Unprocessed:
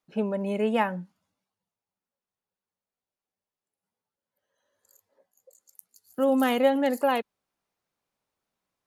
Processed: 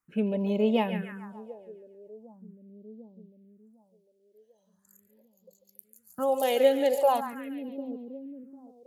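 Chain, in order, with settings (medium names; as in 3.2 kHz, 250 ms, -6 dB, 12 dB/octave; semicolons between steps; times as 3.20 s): two-band feedback delay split 470 Hz, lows 750 ms, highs 141 ms, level -10 dB; phase shifter stages 4, 0.41 Hz, lowest notch 180–1700 Hz; trim +1.5 dB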